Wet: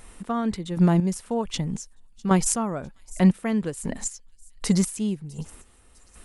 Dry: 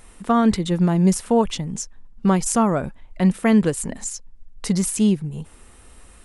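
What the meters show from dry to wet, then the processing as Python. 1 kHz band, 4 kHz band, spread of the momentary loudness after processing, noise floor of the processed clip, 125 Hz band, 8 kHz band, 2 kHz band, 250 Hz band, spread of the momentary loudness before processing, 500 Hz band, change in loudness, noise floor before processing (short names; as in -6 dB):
-6.5 dB, -4.0 dB, 15 LU, -55 dBFS, -2.5 dB, -3.0 dB, -5.0 dB, -5.0 dB, 15 LU, -6.5 dB, -4.5 dB, -48 dBFS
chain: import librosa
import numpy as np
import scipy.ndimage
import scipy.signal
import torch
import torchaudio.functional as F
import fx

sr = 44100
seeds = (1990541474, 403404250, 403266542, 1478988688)

y = fx.chopper(x, sr, hz=1.3, depth_pct=65, duty_pct=30)
y = fx.echo_wet_highpass(y, sr, ms=653, feedback_pct=43, hz=5100.0, wet_db=-18.0)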